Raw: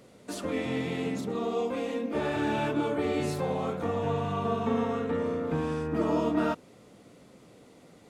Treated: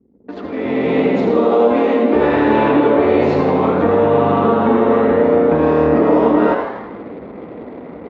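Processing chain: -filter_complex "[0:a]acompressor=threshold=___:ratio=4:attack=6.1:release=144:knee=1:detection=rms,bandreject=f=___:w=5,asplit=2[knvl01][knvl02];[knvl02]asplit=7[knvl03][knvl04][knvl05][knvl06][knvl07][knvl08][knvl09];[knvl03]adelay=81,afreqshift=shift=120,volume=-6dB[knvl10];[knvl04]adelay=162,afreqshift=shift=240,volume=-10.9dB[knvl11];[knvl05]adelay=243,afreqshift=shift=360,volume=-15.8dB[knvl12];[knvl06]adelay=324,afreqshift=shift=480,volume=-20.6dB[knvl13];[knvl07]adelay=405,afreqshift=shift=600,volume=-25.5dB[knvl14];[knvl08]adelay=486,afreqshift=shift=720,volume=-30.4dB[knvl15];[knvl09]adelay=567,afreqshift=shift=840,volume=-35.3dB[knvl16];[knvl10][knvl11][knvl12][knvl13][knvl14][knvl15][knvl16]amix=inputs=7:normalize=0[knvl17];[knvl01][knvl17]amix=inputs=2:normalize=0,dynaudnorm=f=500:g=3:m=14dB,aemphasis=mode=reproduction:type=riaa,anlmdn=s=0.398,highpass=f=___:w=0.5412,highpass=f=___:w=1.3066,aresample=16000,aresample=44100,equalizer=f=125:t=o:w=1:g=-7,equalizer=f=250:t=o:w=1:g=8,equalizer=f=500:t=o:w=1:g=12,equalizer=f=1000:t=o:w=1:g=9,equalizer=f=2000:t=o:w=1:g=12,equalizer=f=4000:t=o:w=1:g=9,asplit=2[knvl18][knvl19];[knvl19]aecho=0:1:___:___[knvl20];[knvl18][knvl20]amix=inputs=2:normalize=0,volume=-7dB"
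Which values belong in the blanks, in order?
-34dB, 540, 49, 49, 109, 0.266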